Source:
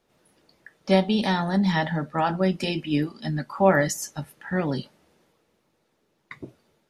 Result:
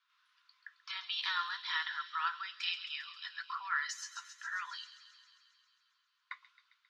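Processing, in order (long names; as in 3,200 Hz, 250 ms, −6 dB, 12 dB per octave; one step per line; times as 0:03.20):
brickwall limiter −15 dBFS, peak gain reduction 10 dB
Chebyshev high-pass with heavy ripple 1,000 Hz, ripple 6 dB
high-frequency loss of the air 170 metres
delay with a high-pass on its return 134 ms, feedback 71%, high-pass 3,400 Hz, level −8.5 dB
level +2.5 dB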